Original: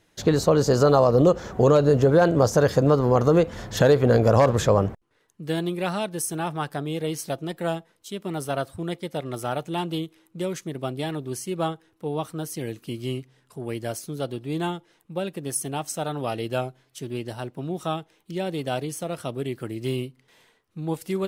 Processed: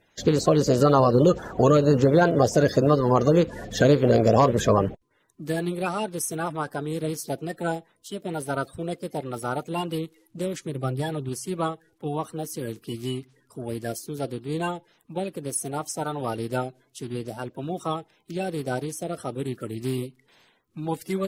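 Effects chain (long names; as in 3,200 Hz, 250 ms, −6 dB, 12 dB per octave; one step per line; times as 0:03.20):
spectral magnitudes quantised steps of 30 dB
0:10.65–0:11.29: parametric band 130 Hz +9 dB 0.34 octaves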